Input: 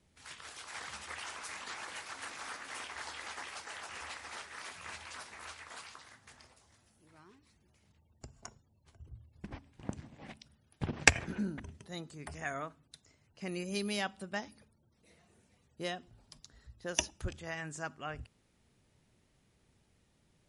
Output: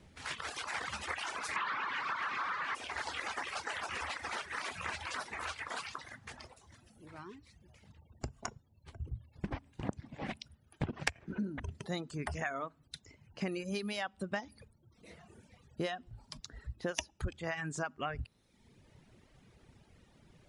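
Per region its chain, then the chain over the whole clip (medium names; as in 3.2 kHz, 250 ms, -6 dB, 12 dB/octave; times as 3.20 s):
1.56–2.75 s: resonant low shelf 780 Hz -10.5 dB, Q 3 + power-law waveshaper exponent 0.35 + band-pass 120–3100 Hz
whole clip: treble shelf 5.5 kHz -11 dB; compression 6:1, threshold -45 dBFS; reverb removal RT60 1.1 s; trim +12 dB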